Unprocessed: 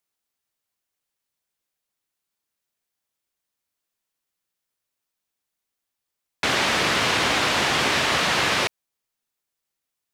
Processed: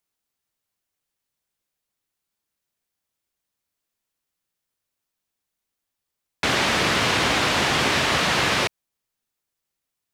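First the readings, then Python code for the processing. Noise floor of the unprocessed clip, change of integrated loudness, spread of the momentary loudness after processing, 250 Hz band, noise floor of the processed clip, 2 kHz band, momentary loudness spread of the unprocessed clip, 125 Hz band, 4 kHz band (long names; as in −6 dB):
−83 dBFS, +0.5 dB, 4 LU, +2.5 dB, −83 dBFS, 0.0 dB, 4 LU, +4.0 dB, 0.0 dB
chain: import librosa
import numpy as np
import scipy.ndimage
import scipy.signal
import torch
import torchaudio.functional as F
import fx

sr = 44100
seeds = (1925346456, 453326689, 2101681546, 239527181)

y = fx.low_shelf(x, sr, hz=260.0, db=5.0)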